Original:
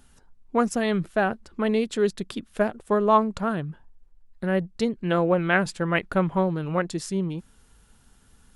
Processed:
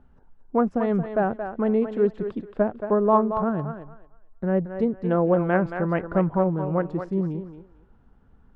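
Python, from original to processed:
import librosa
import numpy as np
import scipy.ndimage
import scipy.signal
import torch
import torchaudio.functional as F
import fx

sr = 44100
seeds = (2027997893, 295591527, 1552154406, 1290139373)

y = scipy.signal.sosfilt(scipy.signal.butter(2, 1000.0, 'lowpass', fs=sr, output='sos'), x)
y = fx.echo_thinned(y, sr, ms=225, feedback_pct=24, hz=400.0, wet_db=-7.0)
y = y * 10.0 ** (1.5 / 20.0)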